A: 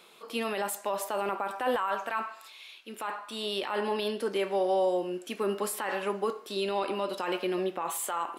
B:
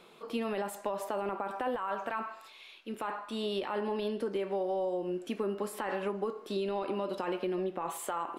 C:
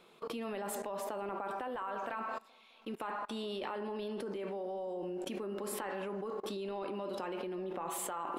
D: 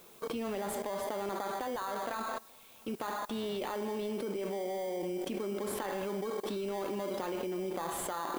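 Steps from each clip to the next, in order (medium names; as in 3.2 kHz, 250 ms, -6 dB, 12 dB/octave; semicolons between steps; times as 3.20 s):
tilt EQ -2.5 dB/octave; compression, threshold -30 dBFS, peak gain reduction 9 dB
bucket-brigade echo 211 ms, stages 2048, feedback 57%, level -16 dB; level held to a coarse grid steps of 23 dB; trim +7 dB
in parallel at -5 dB: sample-rate reducer 2.7 kHz, jitter 0%; on the sum: added noise blue -59 dBFS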